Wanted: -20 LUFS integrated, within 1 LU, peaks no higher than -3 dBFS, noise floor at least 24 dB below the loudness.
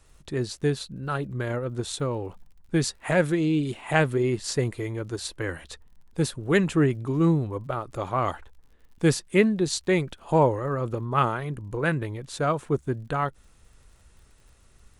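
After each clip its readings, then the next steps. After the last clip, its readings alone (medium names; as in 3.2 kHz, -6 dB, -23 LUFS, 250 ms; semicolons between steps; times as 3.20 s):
tick rate 52 per s; loudness -26.5 LUFS; peak level -6.5 dBFS; loudness target -20.0 LUFS
-> de-click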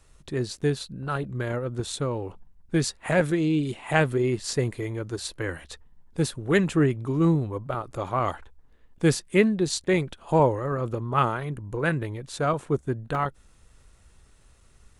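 tick rate 0.13 per s; loudness -26.5 LUFS; peak level -6.5 dBFS; loudness target -20.0 LUFS
-> trim +6.5 dB; peak limiter -3 dBFS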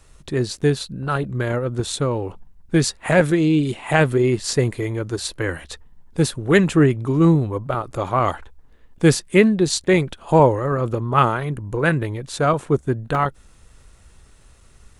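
loudness -20.0 LUFS; peak level -3.0 dBFS; noise floor -50 dBFS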